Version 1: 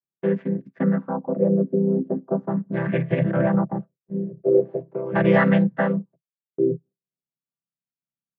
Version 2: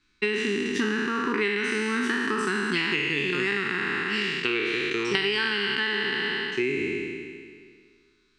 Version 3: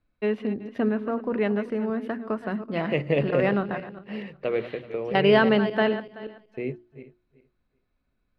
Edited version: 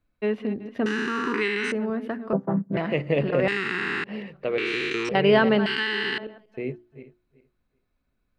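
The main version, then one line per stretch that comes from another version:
3
0:00.86–0:01.72: punch in from 2
0:02.33–0:02.77: punch in from 1
0:03.48–0:04.04: punch in from 2
0:04.58–0:05.09: punch in from 2
0:05.66–0:06.18: punch in from 2

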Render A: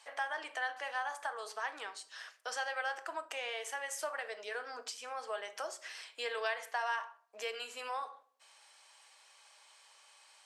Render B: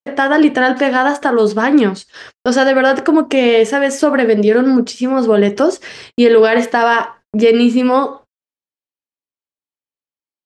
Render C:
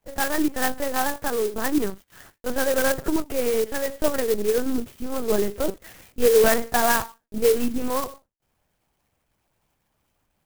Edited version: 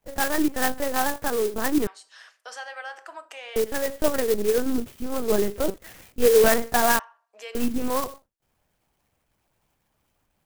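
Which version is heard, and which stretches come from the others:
C
0:01.87–0:03.56: punch in from A
0:06.99–0:07.55: punch in from A
not used: B

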